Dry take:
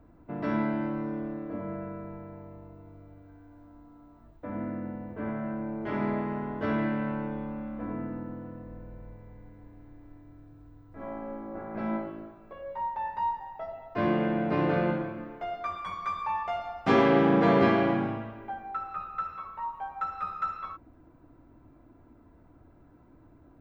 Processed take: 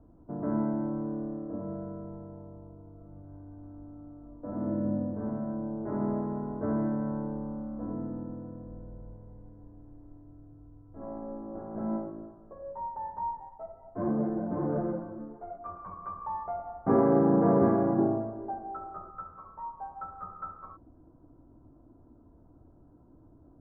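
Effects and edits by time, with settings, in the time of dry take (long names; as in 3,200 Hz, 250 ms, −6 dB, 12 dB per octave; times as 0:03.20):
0:02.93–0:04.84: thrown reverb, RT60 2.2 s, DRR −2.5 dB
0:13.49–0:15.66: string-ensemble chorus
0:17.98–0:19.11: hollow resonant body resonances 370/640/3,000 Hz, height 12 dB, ringing for 35 ms
whole clip: adaptive Wiener filter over 9 samples; Bessel low-pass filter 810 Hz, order 8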